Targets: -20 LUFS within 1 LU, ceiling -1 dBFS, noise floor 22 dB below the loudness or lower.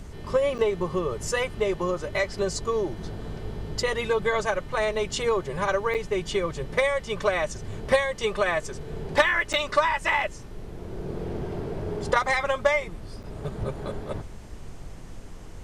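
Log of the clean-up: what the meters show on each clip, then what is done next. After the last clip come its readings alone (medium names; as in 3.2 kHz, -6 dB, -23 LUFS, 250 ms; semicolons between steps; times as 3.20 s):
dropouts 4; longest dropout 7.9 ms; noise floor -41 dBFS; noise floor target -49 dBFS; loudness -26.5 LUFS; peak level -8.5 dBFS; loudness target -20.0 LUFS
-> interpolate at 0.58/5.94/9.53/13.23 s, 7.9 ms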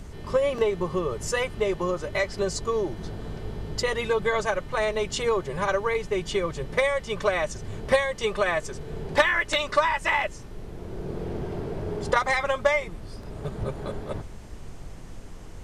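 dropouts 0; noise floor -41 dBFS; noise floor target -49 dBFS
-> noise print and reduce 8 dB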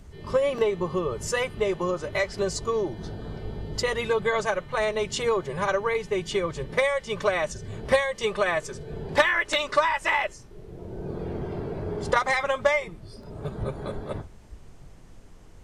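noise floor -47 dBFS; noise floor target -49 dBFS
-> noise print and reduce 6 dB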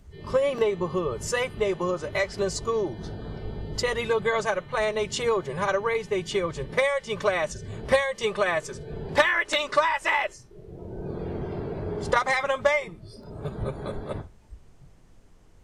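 noise floor -52 dBFS; loudness -26.5 LUFS; peak level -8.5 dBFS; loudness target -20.0 LUFS
-> trim +6.5 dB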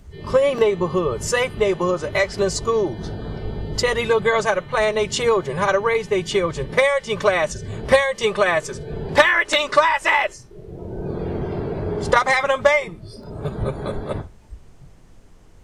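loudness -20.0 LUFS; peak level -2.0 dBFS; noise floor -46 dBFS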